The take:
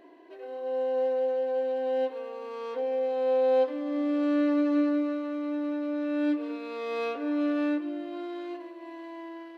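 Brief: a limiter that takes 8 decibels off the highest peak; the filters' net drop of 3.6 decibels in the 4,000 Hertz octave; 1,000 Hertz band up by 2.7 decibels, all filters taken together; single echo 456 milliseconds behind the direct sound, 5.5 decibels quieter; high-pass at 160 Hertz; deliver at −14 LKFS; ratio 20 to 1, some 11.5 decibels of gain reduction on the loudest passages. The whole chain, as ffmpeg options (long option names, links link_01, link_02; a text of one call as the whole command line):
ffmpeg -i in.wav -af "highpass=160,equalizer=frequency=1000:width_type=o:gain=4,equalizer=frequency=4000:width_type=o:gain=-5,acompressor=threshold=-31dB:ratio=20,alimiter=level_in=9.5dB:limit=-24dB:level=0:latency=1,volume=-9.5dB,aecho=1:1:456:0.531,volume=25dB" out.wav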